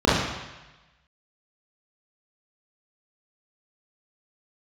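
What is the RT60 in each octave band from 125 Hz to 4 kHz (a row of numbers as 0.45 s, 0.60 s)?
1.2 s, 0.95 s, 1.0 s, 1.1 s, 1.2 s, 1.2 s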